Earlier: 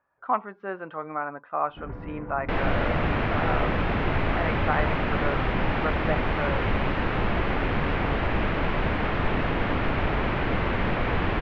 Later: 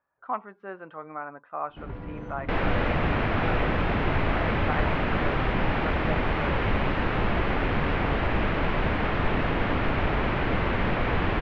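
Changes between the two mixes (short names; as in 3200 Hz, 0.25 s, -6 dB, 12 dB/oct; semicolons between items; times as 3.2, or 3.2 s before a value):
speech -5.5 dB; first sound: remove LPF 2000 Hz 24 dB/oct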